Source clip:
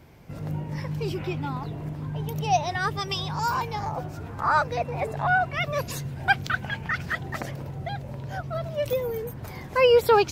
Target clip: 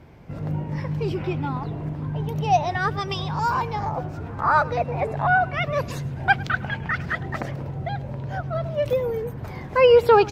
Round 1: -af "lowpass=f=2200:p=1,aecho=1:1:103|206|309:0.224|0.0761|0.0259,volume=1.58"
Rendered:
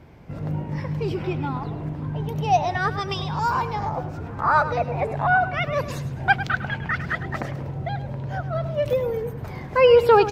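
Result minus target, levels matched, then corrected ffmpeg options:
echo-to-direct +8.5 dB
-af "lowpass=f=2200:p=1,aecho=1:1:103|206:0.0841|0.0286,volume=1.58"

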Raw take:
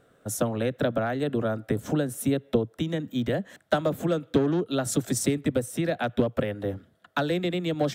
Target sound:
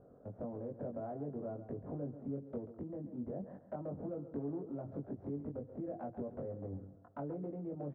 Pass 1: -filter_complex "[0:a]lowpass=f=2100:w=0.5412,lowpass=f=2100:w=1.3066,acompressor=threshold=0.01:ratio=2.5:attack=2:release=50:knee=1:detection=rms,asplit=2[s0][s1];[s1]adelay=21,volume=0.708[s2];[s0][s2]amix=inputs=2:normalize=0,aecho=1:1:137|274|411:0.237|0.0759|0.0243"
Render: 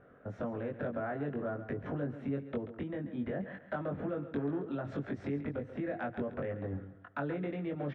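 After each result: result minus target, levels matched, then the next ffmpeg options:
2 kHz band +17.5 dB; compression: peak gain reduction -5.5 dB
-filter_complex "[0:a]lowpass=f=860:w=0.5412,lowpass=f=860:w=1.3066,acompressor=threshold=0.01:ratio=2.5:attack=2:release=50:knee=1:detection=rms,asplit=2[s0][s1];[s1]adelay=21,volume=0.708[s2];[s0][s2]amix=inputs=2:normalize=0,aecho=1:1:137|274|411:0.237|0.0759|0.0243"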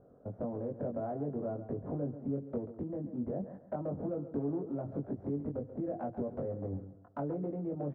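compression: peak gain reduction -5.5 dB
-filter_complex "[0:a]lowpass=f=860:w=0.5412,lowpass=f=860:w=1.3066,acompressor=threshold=0.00355:ratio=2.5:attack=2:release=50:knee=1:detection=rms,asplit=2[s0][s1];[s1]adelay=21,volume=0.708[s2];[s0][s2]amix=inputs=2:normalize=0,aecho=1:1:137|274|411:0.237|0.0759|0.0243"

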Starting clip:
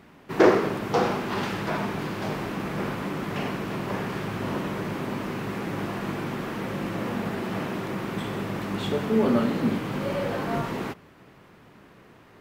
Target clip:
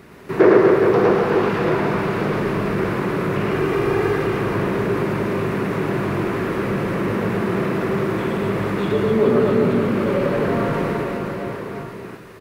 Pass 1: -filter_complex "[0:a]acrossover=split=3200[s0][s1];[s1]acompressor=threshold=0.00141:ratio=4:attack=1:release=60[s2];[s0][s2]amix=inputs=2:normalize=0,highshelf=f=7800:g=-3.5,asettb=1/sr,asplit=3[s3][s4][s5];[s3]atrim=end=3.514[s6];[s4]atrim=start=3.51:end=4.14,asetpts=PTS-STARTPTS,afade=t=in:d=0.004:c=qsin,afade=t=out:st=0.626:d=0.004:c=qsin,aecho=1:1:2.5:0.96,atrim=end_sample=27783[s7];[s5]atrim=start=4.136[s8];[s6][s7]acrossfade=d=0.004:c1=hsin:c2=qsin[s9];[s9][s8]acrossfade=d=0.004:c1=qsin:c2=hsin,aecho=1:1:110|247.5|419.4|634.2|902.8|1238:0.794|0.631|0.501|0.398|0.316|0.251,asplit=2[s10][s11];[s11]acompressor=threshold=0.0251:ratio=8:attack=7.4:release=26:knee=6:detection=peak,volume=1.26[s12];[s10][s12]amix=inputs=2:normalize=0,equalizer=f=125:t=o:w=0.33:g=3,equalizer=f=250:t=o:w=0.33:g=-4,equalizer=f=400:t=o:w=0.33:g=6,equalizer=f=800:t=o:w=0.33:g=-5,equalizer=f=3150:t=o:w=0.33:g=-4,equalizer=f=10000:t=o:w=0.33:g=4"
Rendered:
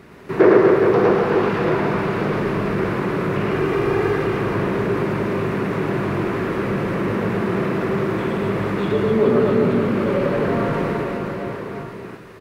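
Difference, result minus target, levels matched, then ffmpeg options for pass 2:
8 kHz band -3.0 dB
-filter_complex "[0:a]acrossover=split=3200[s0][s1];[s1]acompressor=threshold=0.00141:ratio=4:attack=1:release=60[s2];[s0][s2]amix=inputs=2:normalize=0,highshelf=f=7800:g=3,asettb=1/sr,asplit=3[s3][s4][s5];[s3]atrim=end=3.514[s6];[s4]atrim=start=3.51:end=4.14,asetpts=PTS-STARTPTS,afade=t=in:d=0.004:c=qsin,afade=t=out:st=0.626:d=0.004:c=qsin,aecho=1:1:2.5:0.96,atrim=end_sample=27783[s7];[s5]atrim=start=4.136[s8];[s6][s7]acrossfade=d=0.004:c1=hsin:c2=qsin[s9];[s9][s8]acrossfade=d=0.004:c1=qsin:c2=hsin,aecho=1:1:110|247.5|419.4|634.2|902.8|1238:0.794|0.631|0.501|0.398|0.316|0.251,asplit=2[s10][s11];[s11]acompressor=threshold=0.0251:ratio=8:attack=7.4:release=26:knee=6:detection=peak,volume=1.26[s12];[s10][s12]amix=inputs=2:normalize=0,equalizer=f=125:t=o:w=0.33:g=3,equalizer=f=250:t=o:w=0.33:g=-4,equalizer=f=400:t=o:w=0.33:g=6,equalizer=f=800:t=o:w=0.33:g=-5,equalizer=f=3150:t=o:w=0.33:g=-4,equalizer=f=10000:t=o:w=0.33:g=4"

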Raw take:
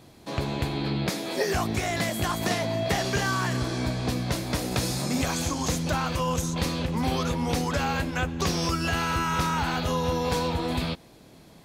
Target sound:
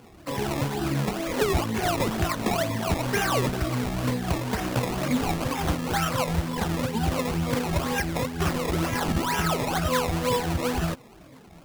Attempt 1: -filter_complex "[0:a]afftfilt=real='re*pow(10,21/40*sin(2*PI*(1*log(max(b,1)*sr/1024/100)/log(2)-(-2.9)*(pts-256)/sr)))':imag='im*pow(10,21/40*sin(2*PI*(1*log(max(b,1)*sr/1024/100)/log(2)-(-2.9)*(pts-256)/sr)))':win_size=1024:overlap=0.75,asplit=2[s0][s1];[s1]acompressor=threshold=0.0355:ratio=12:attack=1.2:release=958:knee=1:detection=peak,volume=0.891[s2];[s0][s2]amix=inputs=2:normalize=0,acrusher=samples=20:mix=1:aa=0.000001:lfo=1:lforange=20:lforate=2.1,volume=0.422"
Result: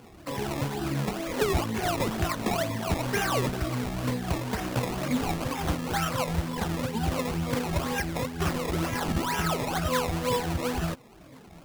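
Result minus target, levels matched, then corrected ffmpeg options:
compression: peak gain reduction +10.5 dB
-filter_complex "[0:a]afftfilt=real='re*pow(10,21/40*sin(2*PI*(1*log(max(b,1)*sr/1024/100)/log(2)-(-2.9)*(pts-256)/sr)))':imag='im*pow(10,21/40*sin(2*PI*(1*log(max(b,1)*sr/1024/100)/log(2)-(-2.9)*(pts-256)/sr)))':win_size=1024:overlap=0.75,asplit=2[s0][s1];[s1]acompressor=threshold=0.133:ratio=12:attack=1.2:release=958:knee=1:detection=peak,volume=0.891[s2];[s0][s2]amix=inputs=2:normalize=0,acrusher=samples=20:mix=1:aa=0.000001:lfo=1:lforange=20:lforate=2.1,volume=0.422"

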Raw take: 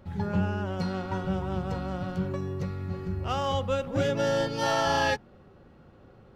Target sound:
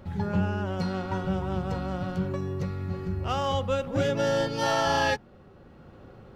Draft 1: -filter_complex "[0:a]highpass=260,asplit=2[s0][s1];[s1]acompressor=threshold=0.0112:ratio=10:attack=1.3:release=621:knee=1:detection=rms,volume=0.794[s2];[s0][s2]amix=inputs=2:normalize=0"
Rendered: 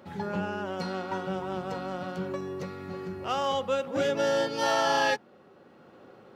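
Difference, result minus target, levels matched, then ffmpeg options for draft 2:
250 Hz band -3.0 dB
-filter_complex "[0:a]asplit=2[s0][s1];[s1]acompressor=threshold=0.0112:ratio=10:attack=1.3:release=621:knee=1:detection=rms,volume=0.794[s2];[s0][s2]amix=inputs=2:normalize=0"

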